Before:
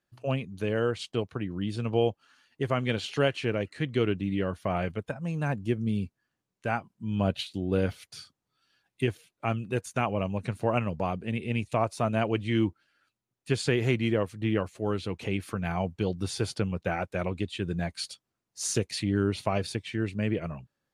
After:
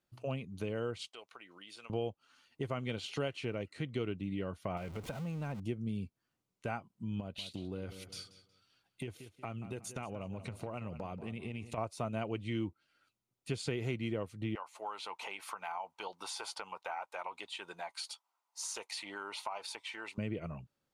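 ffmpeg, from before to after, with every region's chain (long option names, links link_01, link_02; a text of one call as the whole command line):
ffmpeg -i in.wav -filter_complex "[0:a]asettb=1/sr,asplit=3[link_01][link_02][link_03];[link_01]atrim=end=1.084[link_04];[link_02]atrim=start=1.08:end=1.9,asetpts=PTS-STARTPTS,afade=type=in:duration=0.004:curve=qsin,afade=type=out:start_time=0.816:duration=0.004:curve=qsin,highpass=930,acompressor=threshold=-50dB:ratio=2:attack=3.2:release=140:knee=1:detection=peak[link_05];[link_03]atrim=start=1.896[link_06];[link_04][link_05]acrossfade=duration=0.004:curve1=hsin:curve2=qsin[link_07];[link_07][link_06]acrossfade=duration=0.004:curve1=qsin:curve2=hsin,asettb=1/sr,asplit=3[link_08][link_09][link_10];[link_08]atrim=end=4.774[link_11];[link_09]atrim=start=4.77:end=5.6,asetpts=PTS-STARTPTS,afade=type=in:duration=0.004:curve=qsin,afade=type=out:start_time=0.826:duration=0.004:curve=qsin,aeval=exprs='val(0)+0.5*0.0158*sgn(val(0))':channel_layout=same,highshelf=frequency=7600:gain=-5,acompressor=threshold=-34dB:ratio=2:attack=3.2:release=140:knee=1:detection=peak[link_12];[link_10]atrim=start=5.596[link_13];[link_11][link_12]acrossfade=duration=0.004:curve1=hsin:curve2=qsin[link_14];[link_14][link_13]acrossfade=duration=0.004:curve1=qsin:curve2=hsin,asettb=1/sr,asplit=3[link_15][link_16][link_17];[link_15]atrim=end=7.204[link_18];[link_16]atrim=start=7.2:end=11.78,asetpts=PTS-STARTPTS,afade=type=in:duration=0.004:curve=qsin,afade=type=out:start_time=4.576:duration=0.004:curve=qsin,acompressor=threshold=-34dB:ratio=3:attack=3.2:release=140:knee=1:detection=peak,asplit=2[link_19][link_20];[link_20]adelay=183,lowpass=frequency=5000:poles=1,volume=-14dB,asplit=2[link_21][link_22];[link_22]adelay=183,lowpass=frequency=5000:poles=1,volume=0.37,asplit=2[link_23][link_24];[link_24]adelay=183,lowpass=frequency=5000:poles=1,volume=0.37,asplit=2[link_25][link_26];[link_26]adelay=183,lowpass=frequency=5000:poles=1,volume=0.37[link_27];[link_19][link_21][link_23][link_25][link_27]amix=inputs=5:normalize=0,atrim=end_sample=201978[link_28];[link_17]atrim=start=11.776[link_29];[link_18][link_28]acrossfade=duration=0.004:curve1=hsin:curve2=qsin[link_30];[link_30][link_29]acrossfade=duration=0.004:curve1=qsin:curve2=hsin,asettb=1/sr,asplit=3[link_31][link_32][link_33];[link_31]atrim=end=14.554[link_34];[link_32]atrim=start=14.55:end=20.18,asetpts=PTS-STARTPTS,afade=type=in:duration=0.004:curve=qsin,afade=type=out:start_time=5.626:duration=0.004:curve=qsin,highpass=frequency=910:width_type=q:width=5.7,acompressor=threshold=-36dB:ratio=2:attack=3.2:release=140:knee=1:detection=peak[link_35];[link_33]atrim=start=20.176[link_36];[link_34][link_35]acrossfade=duration=0.004:curve1=hsin:curve2=qsin[link_37];[link_37][link_36]acrossfade=duration=0.004:curve1=qsin:curve2=hsin,bandreject=frequency=1700:width=6.9,acompressor=threshold=-38dB:ratio=2,volume=-1.5dB" out.wav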